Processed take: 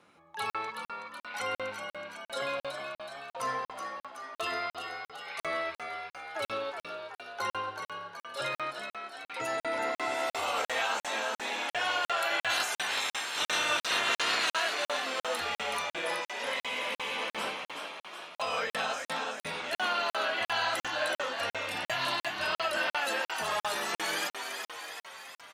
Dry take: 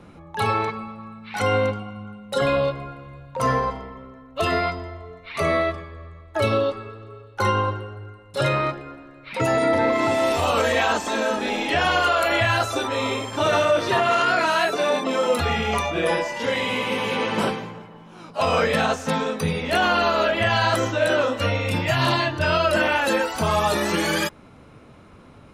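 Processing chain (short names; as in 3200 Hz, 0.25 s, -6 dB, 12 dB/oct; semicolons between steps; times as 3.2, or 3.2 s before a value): 12.49–14.49 spectral limiter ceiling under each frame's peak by 20 dB; HPF 1200 Hz 6 dB/oct; frequency-shifting echo 0.374 s, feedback 61%, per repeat +71 Hz, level -6.5 dB; added harmonics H 4 -40 dB, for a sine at -8 dBFS; crackling interface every 0.35 s, samples 2048, zero, from 0.5; gain -7 dB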